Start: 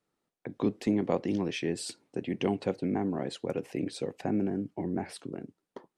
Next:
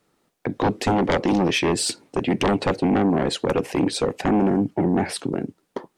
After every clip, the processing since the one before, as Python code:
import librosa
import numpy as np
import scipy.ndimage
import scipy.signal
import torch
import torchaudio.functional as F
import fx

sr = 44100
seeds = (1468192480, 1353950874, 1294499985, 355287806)

y = fx.fold_sine(x, sr, drive_db=11, ceiling_db=-14.5)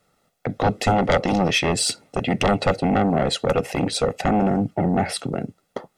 y = x + 0.58 * np.pad(x, (int(1.5 * sr / 1000.0), 0))[:len(x)]
y = y * librosa.db_to_amplitude(1.0)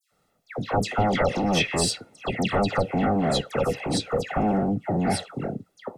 y = fx.dispersion(x, sr, late='lows', ms=118.0, hz=2000.0)
y = y * librosa.db_to_amplitude(-3.5)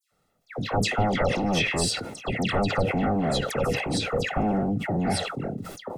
y = fx.low_shelf(x, sr, hz=88.0, db=5.5)
y = fx.sustainer(y, sr, db_per_s=54.0)
y = y * librosa.db_to_amplitude(-2.5)